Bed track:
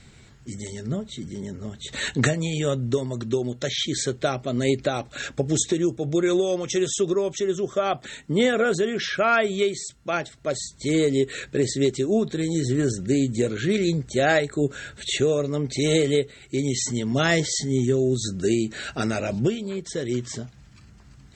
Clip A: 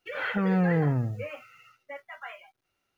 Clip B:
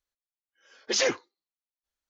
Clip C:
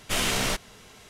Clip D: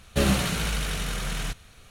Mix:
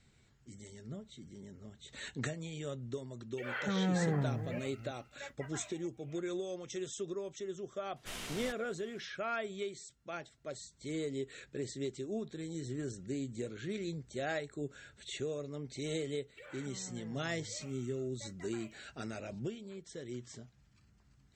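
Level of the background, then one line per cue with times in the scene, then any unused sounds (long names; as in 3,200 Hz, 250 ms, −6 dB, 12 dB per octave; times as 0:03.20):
bed track −17 dB
0:03.31: mix in A −8 dB + delay that plays each chunk backwards 321 ms, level −12 dB
0:07.96: mix in C −18 dB
0:16.31: mix in A −10.5 dB + downward compressor 12 to 1, threshold −38 dBFS
not used: B, D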